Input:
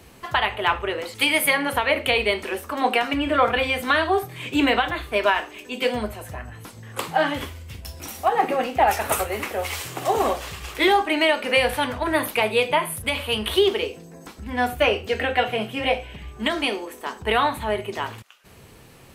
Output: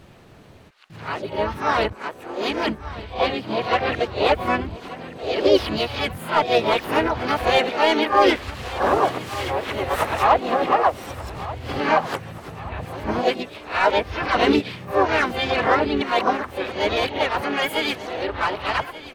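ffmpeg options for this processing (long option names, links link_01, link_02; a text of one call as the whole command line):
ffmpeg -i in.wav -filter_complex "[0:a]areverse,acrossover=split=790[link_01][link_02];[link_02]asoftclip=type=hard:threshold=-17.5dB[link_03];[link_01][link_03]amix=inputs=2:normalize=0,aemphasis=mode=reproduction:type=75kf,asplit=4[link_04][link_05][link_06][link_07];[link_05]asetrate=33038,aresample=44100,atempo=1.33484,volume=-9dB[link_08];[link_06]asetrate=58866,aresample=44100,atempo=0.749154,volume=-6dB[link_09];[link_07]asetrate=66075,aresample=44100,atempo=0.66742,volume=-4dB[link_10];[link_04][link_08][link_09][link_10]amix=inputs=4:normalize=0,dynaudnorm=framelen=260:gausssize=31:maxgain=4dB,asplit=2[link_11][link_12];[link_12]aecho=0:1:1182|2364|3546|4728|5910:0.158|0.0872|0.0479|0.0264|0.0145[link_13];[link_11][link_13]amix=inputs=2:normalize=0,volume=-1dB" out.wav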